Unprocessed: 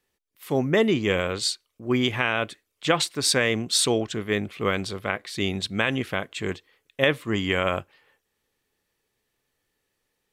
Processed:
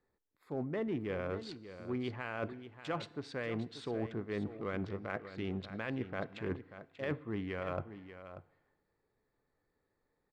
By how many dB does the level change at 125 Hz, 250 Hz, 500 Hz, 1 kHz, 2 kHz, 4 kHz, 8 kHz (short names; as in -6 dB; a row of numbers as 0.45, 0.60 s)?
-11.0 dB, -12.0 dB, -13.5 dB, -14.0 dB, -17.5 dB, -25.0 dB, under -35 dB